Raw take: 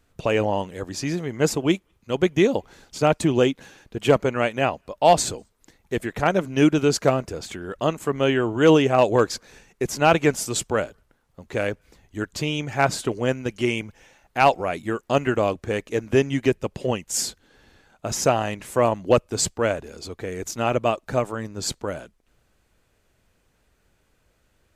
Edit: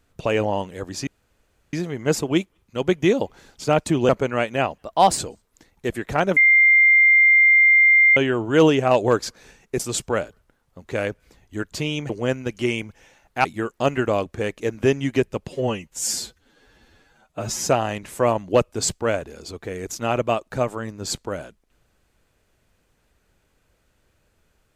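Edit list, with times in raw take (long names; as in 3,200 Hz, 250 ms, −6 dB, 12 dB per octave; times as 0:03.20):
0:01.07: splice in room tone 0.66 s
0:03.43–0:04.12: remove
0:04.81–0:05.26: play speed 111%
0:06.44–0:08.24: beep over 2,100 Hz −10.5 dBFS
0:09.87–0:10.41: remove
0:12.71–0:13.09: remove
0:14.44–0:14.74: remove
0:16.79–0:18.25: time-stretch 1.5×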